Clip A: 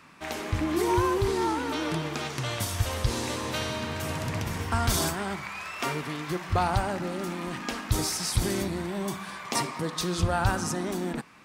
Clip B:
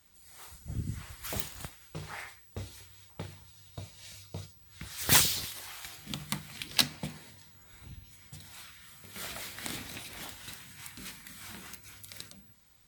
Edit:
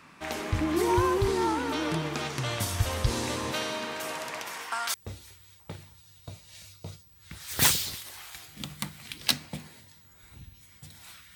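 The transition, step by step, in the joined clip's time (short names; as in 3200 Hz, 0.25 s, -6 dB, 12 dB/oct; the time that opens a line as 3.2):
clip A
3.51–4.94 HPF 200 Hz -> 1200 Hz
4.94 switch to clip B from 2.44 s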